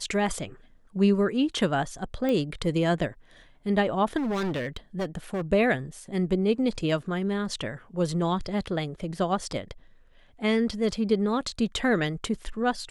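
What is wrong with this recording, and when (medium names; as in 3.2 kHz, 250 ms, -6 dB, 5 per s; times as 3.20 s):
2.29 s: pop -17 dBFS
4.17–5.42 s: clipped -25.5 dBFS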